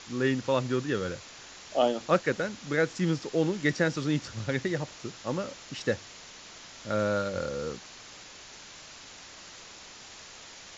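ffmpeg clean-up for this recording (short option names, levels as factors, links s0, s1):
-af "afwtdn=0.0071"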